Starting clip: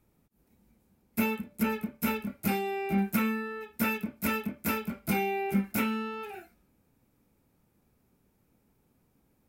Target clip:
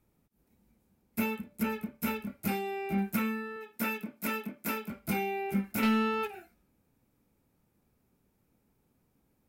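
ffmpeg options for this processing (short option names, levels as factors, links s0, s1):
-filter_complex "[0:a]asettb=1/sr,asplit=3[s0][s1][s2];[s0]atrim=end=3.564[s3];[s1]atrim=start=3.56:end=4.9,asetpts=PTS-STARTPTS,afade=t=in:d=0.004:c=qsin,afade=t=out:st=1.336:d=0.004:c=qsin,highpass=190[s4];[s2]atrim=start=4.896[s5];[s3][s4]acrossfade=d=0.004:c1=hsin:c2=qsin[s6];[s6][s5]acrossfade=d=0.004:c1=qsin:c2=hsin,asplit=3[s7][s8][s9];[s7]afade=t=out:st=5.82:d=0.02[s10];[s8]aeval=exprs='0.126*sin(PI/2*2*val(0)/0.126)':c=same,afade=t=in:st=5.82:d=0.02,afade=t=out:st=6.26:d=0.02[s11];[s9]afade=t=in:st=6.26:d=0.02[s12];[s10][s11][s12]amix=inputs=3:normalize=0,volume=0.708"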